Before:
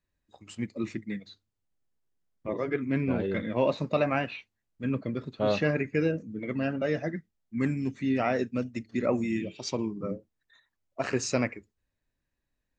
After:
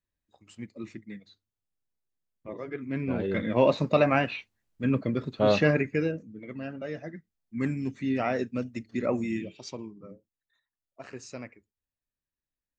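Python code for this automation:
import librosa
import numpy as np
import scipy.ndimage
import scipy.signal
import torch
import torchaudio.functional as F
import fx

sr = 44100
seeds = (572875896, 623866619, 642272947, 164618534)

y = fx.gain(x, sr, db=fx.line((2.72, -7.0), (3.53, 4.0), (5.73, 4.0), (6.39, -7.5), (7.16, -7.5), (7.65, -1.0), (9.33, -1.0), (10.09, -13.5)))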